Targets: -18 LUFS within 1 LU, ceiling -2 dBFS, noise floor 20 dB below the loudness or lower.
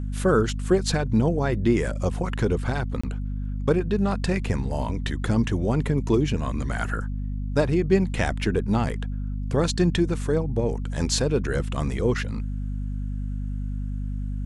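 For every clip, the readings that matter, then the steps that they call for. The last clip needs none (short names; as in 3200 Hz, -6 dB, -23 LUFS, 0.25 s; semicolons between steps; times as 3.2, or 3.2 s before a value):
dropouts 1; longest dropout 25 ms; hum 50 Hz; harmonics up to 250 Hz; hum level -26 dBFS; loudness -25.5 LUFS; peak -7.0 dBFS; loudness target -18.0 LUFS
-> interpolate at 3.01, 25 ms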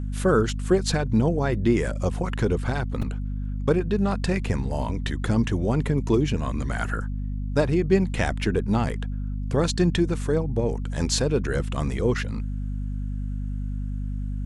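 dropouts 0; hum 50 Hz; harmonics up to 250 Hz; hum level -26 dBFS
-> de-hum 50 Hz, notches 5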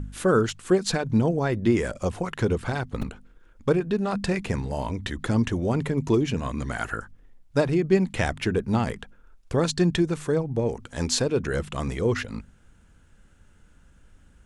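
hum none; loudness -25.5 LUFS; peak -8.0 dBFS; loudness target -18.0 LUFS
-> gain +7.5 dB; limiter -2 dBFS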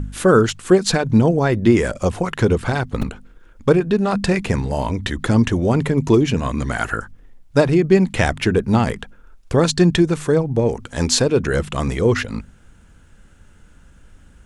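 loudness -18.0 LUFS; peak -2.0 dBFS; noise floor -49 dBFS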